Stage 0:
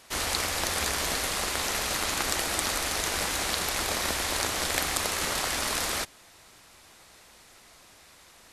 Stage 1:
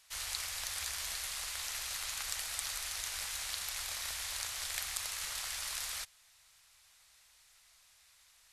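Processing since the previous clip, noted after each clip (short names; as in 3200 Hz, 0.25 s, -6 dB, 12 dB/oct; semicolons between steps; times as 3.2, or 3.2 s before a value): passive tone stack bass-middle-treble 10-0-10; gain -7.5 dB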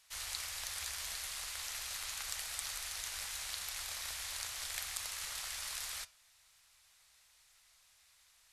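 flange 0.66 Hz, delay 8.4 ms, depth 6.8 ms, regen -86%; gain +2 dB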